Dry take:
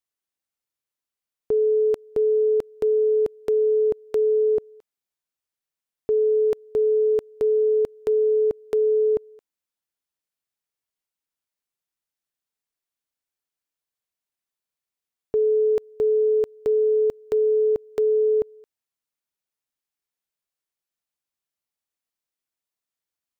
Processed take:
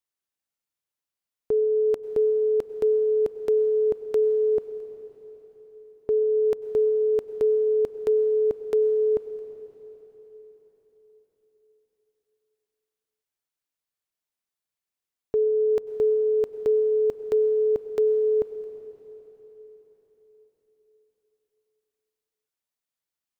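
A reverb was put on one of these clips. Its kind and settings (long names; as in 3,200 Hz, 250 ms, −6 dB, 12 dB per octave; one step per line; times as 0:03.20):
dense smooth reverb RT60 4.6 s, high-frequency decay 1×, pre-delay 85 ms, DRR 11.5 dB
level −1.5 dB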